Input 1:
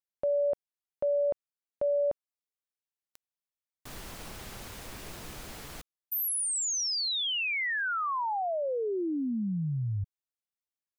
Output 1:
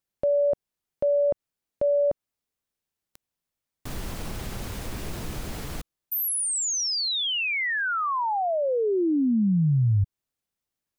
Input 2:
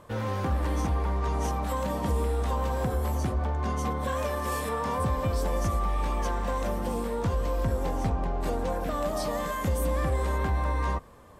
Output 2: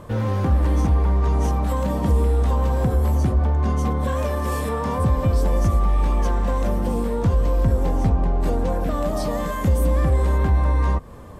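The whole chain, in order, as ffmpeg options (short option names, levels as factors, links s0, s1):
-filter_complex "[0:a]lowshelf=f=410:g=9,asplit=2[s0][s1];[s1]acompressor=threshold=0.0178:ratio=6:attack=0.13:release=218:detection=peak,volume=1.12[s2];[s0][s2]amix=inputs=2:normalize=0"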